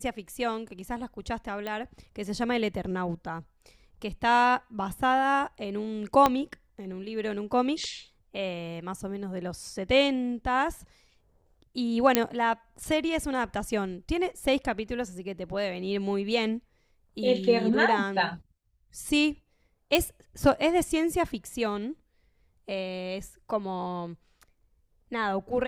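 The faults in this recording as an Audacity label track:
1.670000	1.670000	pop -21 dBFS
6.260000	6.260000	pop -8 dBFS
12.150000	12.150000	pop -4 dBFS
19.950000	19.950000	pop -7 dBFS

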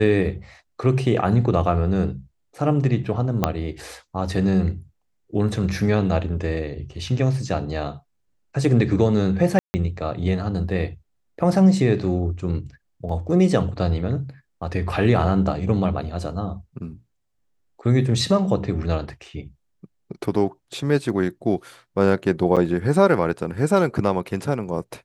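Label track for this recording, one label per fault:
3.440000	3.440000	pop -5 dBFS
9.590000	9.740000	gap 0.15 s
13.090000	13.090000	gap 3.5 ms
22.560000	22.570000	gap 7 ms

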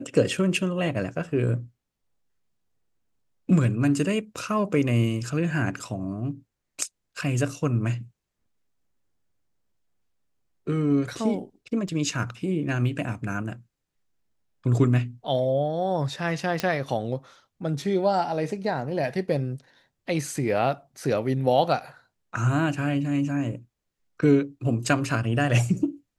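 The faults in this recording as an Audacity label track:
11.880000	11.880000	gap 3.1 ms
16.600000	16.600000	pop -11 dBFS

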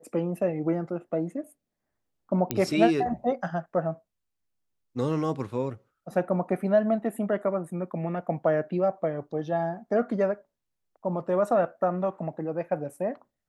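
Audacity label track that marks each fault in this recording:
2.510000	2.510000	pop -10 dBFS

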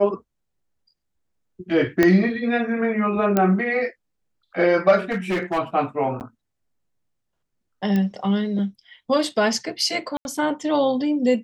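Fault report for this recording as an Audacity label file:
2.030000	2.030000	pop -4 dBFS
3.370000	3.370000	pop -6 dBFS
5.110000	5.590000	clipped -19 dBFS
6.200000	6.210000	gap 9 ms
7.960000	7.960000	pop -13 dBFS
10.170000	10.250000	gap 81 ms

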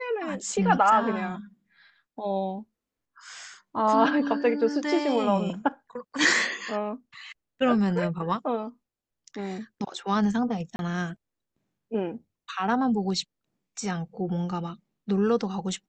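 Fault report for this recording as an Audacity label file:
10.760000	10.790000	gap 31 ms

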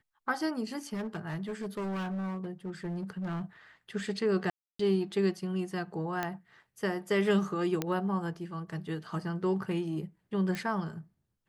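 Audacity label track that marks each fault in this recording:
0.930000	3.420000	clipped -32 dBFS
4.500000	4.790000	gap 0.294 s
6.230000	6.230000	pop -17 dBFS
7.820000	7.820000	pop -15 dBFS
10.550000	10.550000	pop -21 dBFS

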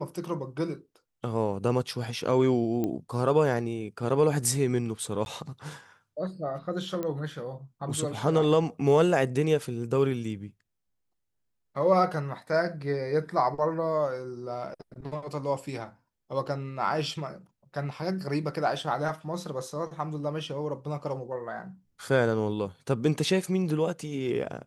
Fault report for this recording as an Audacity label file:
2.840000	2.840000	pop -18 dBFS
5.250000	5.260000	gap
7.030000	7.030000	pop -20 dBFS

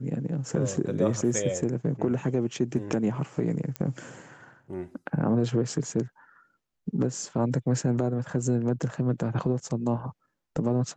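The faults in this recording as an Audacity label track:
3.760000	3.760000	pop -17 dBFS

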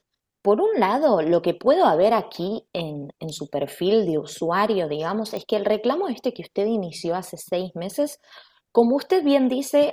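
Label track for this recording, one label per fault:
5.370000	5.370000	pop -18 dBFS

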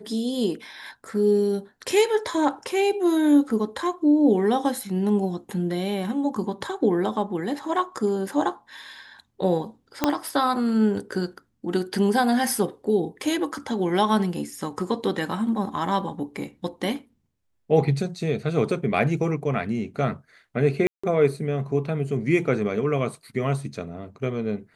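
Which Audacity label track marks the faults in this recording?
10.040000	10.040000	pop -5 dBFS
20.870000	21.040000	gap 0.165 s

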